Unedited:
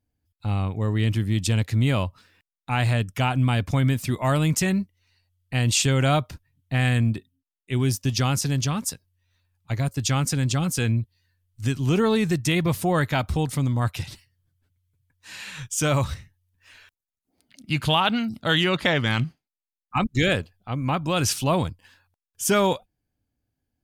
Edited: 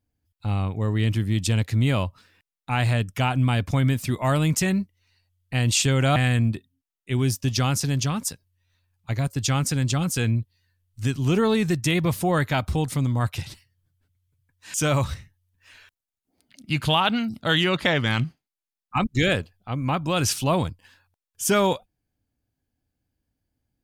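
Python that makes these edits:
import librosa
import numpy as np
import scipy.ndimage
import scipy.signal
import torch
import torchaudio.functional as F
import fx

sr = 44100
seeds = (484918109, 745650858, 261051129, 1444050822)

y = fx.edit(x, sr, fx.cut(start_s=6.16, length_s=0.61),
    fx.cut(start_s=15.35, length_s=0.39), tone=tone)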